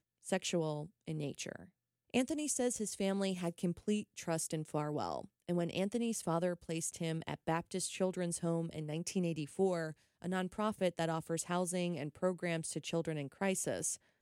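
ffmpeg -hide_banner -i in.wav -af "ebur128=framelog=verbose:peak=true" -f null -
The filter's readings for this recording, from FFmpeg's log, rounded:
Integrated loudness:
  I:         -37.7 LUFS
  Threshold: -47.7 LUFS
Loudness range:
  LRA:         0.9 LU
  Threshold: -57.7 LUFS
  LRA low:   -38.1 LUFS
  LRA high:  -37.2 LUFS
True peak:
  Peak:      -19.3 dBFS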